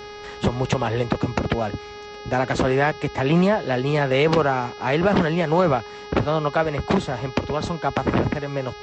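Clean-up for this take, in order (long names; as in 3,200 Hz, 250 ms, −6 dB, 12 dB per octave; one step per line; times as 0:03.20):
hum removal 415.2 Hz, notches 14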